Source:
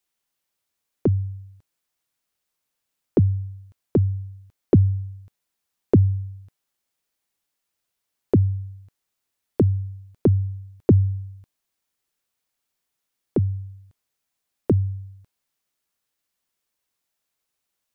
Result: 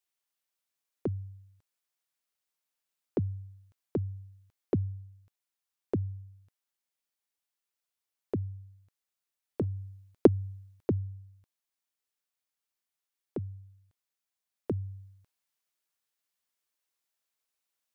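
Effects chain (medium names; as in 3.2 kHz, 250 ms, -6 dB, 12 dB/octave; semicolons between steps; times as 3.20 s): gain riding within 4 dB 0.5 s; 9.61–10.27 s: transient shaper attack +11 dB, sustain -1 dB; bass shelf 400 Hz -8 dB; trim -5 dB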